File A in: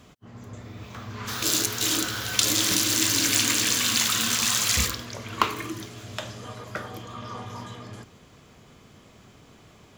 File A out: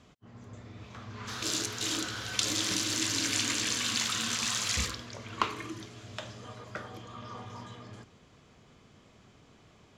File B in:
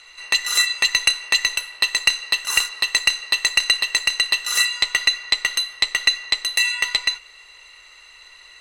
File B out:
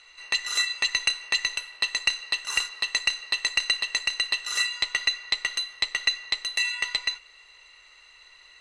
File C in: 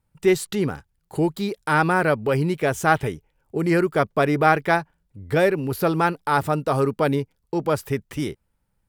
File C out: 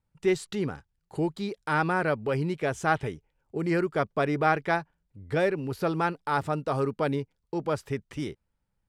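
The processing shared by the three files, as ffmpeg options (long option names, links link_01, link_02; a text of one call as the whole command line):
ffmpeg -i in.wav -af "lowpass=7700,volume=-6.5dB" out.wav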